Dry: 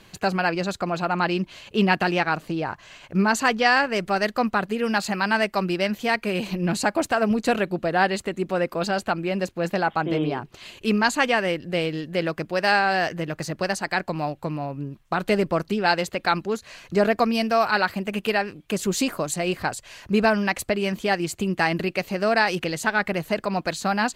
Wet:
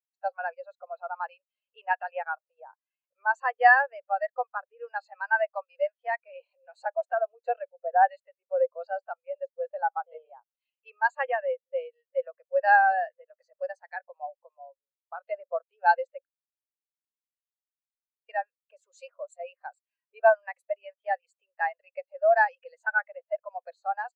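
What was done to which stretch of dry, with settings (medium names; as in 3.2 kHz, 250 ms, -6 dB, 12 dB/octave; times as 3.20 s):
16.25–18.29 s: room tone
whole clip: elliptic high-pass 510 Hz, stop band 40 dB; spectral contrast expander 2.5:1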